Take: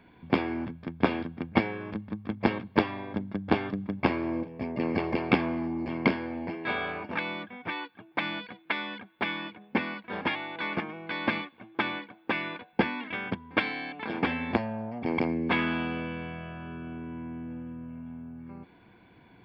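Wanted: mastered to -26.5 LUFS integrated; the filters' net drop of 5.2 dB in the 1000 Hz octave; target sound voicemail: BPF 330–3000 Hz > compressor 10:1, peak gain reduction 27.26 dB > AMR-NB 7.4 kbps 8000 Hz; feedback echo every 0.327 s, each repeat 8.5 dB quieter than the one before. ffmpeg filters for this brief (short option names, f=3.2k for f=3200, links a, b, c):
-af "highpass=330,lowpass=3k,equalizer=f=1k:t=o:g=-6.5,aecho=1:1:327|654|981|1308:0.376|0.143|0.0543|0.0206,acompressor=threshold=-47dB:ratio=10,volume=26dB" -ar 8000 -c:a libopencore_amrnb -b:a 7400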